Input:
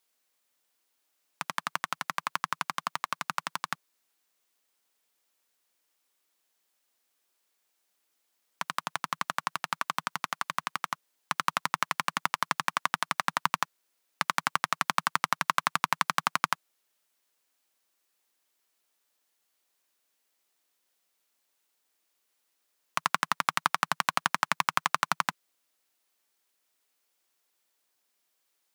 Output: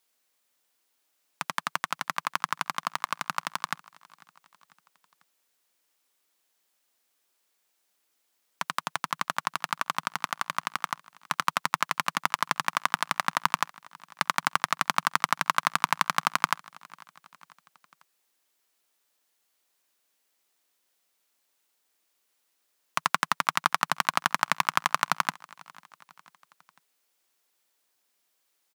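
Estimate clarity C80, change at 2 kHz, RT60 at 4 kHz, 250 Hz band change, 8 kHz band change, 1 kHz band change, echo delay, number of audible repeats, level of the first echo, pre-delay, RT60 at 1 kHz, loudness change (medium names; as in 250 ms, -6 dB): no reverb, +2.0 dB, no reverb, +2.0 dB, +2.0 dB, +2.0 dB, 496 ms, 2, -24.0 dB, no reverb, no reverb, +2.0 dB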